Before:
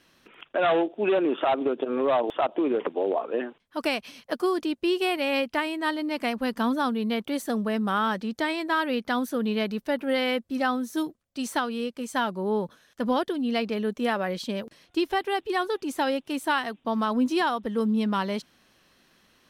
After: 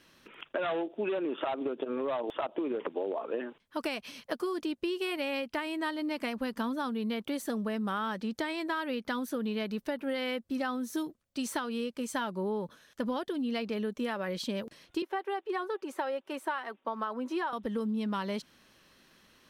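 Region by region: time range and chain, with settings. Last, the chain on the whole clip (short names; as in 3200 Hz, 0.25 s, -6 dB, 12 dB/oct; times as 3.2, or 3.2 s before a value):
15.02–17.53 three-band isolator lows -24 dB, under 330 Hz, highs -12 dB, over 2100 Hz + comb 5.3 ms, depth 31%
whole clip: notch 730 Hz, Q 12; compressor, threshold -30 dBFS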